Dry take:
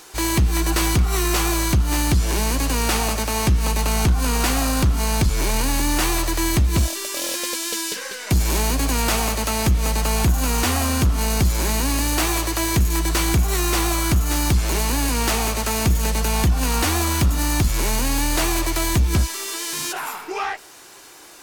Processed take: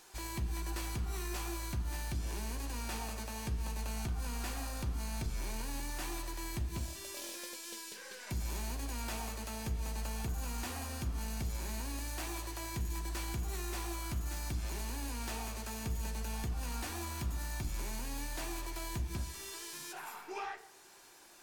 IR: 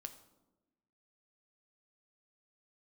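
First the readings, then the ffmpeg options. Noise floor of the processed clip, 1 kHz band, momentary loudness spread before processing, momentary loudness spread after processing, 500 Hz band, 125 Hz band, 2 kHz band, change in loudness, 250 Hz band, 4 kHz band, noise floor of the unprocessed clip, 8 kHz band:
-51 dBFS, -19.0 dB, 4 LU, 4 LU, -20.5 dB, -18.5 dB, -19.5 dB, -19.5 dB, -20.5 dB, -20.0 dB, -36 dBFS, -20.0 dB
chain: -filter_complex "[0:a]alimiter=limit=0.133:level=0:latency=1:release=432[s0];[1:a]atrim=start_sample=2205,asetrate=66150,aresample=44100[s1];[s0][s1]afir=irnorm=-1:irlink=0,volume=0.501"

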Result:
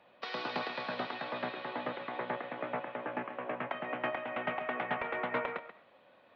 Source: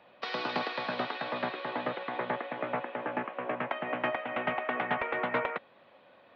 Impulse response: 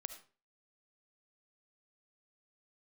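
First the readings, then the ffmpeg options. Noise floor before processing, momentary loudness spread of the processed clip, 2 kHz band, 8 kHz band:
-60 dBFS, 5 LU, -4.0 dB, no reading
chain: -filter_complex "[0:a]asplit=2[s0][s1];[1:a]atrim=start_sample=2205,adelay=134[s2];[s1][s2]afir=irnorm=-1:irlink=0,volume=0.398[s3];[s0][s3]amix=inputs=2:normalize=0,volume=0.631"

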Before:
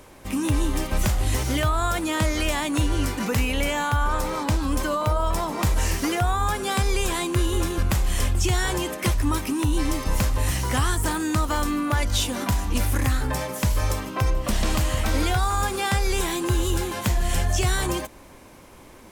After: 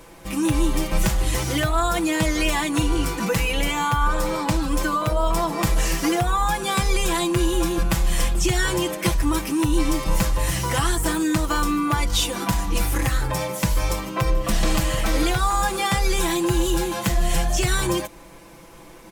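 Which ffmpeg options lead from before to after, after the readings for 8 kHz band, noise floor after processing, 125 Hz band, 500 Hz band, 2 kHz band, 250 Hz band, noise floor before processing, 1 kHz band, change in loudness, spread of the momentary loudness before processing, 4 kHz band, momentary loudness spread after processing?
+2.5 dB, -44 dBFS, -1.0 dB, +3.0 dB, +2.0 dB, +3.0 dB, -47 dBFS, +2.5 dB, +2.0 dB, 3 LU, +2.5 dB, 3 LU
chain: -af "aecho=1:1:6:0.87"

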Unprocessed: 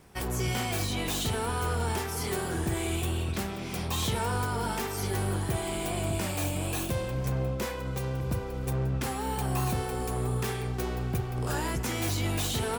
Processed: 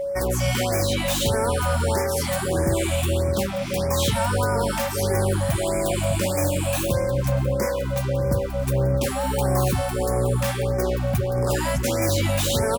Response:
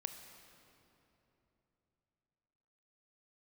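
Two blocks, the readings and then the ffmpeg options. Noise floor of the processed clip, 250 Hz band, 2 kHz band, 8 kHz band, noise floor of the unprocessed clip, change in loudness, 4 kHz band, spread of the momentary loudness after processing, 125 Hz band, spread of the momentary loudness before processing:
-27 dBFS, +6.5 dB, +6.0 dB, +7.0 dB, -35 dBFS, +8.0 dB, +6.0 dB, 3 LU, +7.0 dB, 3 LU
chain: -af "areverse,acompressor=mode=upward:threshold=0.00891:ratio=2.5,areverse,aeval=exprs='val(0)+0.0282*sin(2*PI*560*n/s)':c=same,aecho=1:1:998|1996|2994|3992|4990:0.0794|0.0477|0.0286|0.0172|0.0103,afftfilt=real='re*(1-between(b*sr/1024,350*pow(3500/350,0.5+0.5*sin(2*PI*1.6*pts/sr))/1.41,350*pow(3500/350,0.5+0.5*sin(2*PI*1.6*pts/sr))*1.41))':imag='im*(1-between(b*sr/1024,350*pow(3500/350,0.5+0.5*sin(2*PI*1.6*pts/sr))/1.41,350*pow(3500/350,0.5+0.5*sin(2*PI*1.6*pts/sr))*1.41))':win_size=1024:overlap=0.75,volume=2.24"

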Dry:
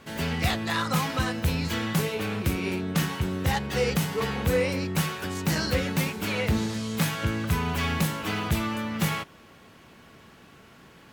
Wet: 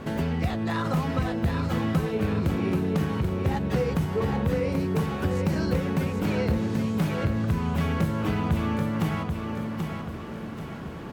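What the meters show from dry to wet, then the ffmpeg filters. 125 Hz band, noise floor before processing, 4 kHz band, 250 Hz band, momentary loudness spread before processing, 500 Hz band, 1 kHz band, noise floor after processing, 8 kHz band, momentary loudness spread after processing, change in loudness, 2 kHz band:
+2.5 dB, -52 dBFS, -8.5 dB, +3.0 dB, 3 LU, +1.5 dB, -1.0 dB, -36 dBFS, -11.5 dB, 6 LU, +0.5 dB, -5.5 dB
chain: -af "tiltshelf=f=1400:g=7.5,acompressor=threshold=0.0158:ratio=3,aecho=1:1:784|1568|2352|3136|3920:0.562|0.242|0.104|0.0447|0.0192,volume=2.37"

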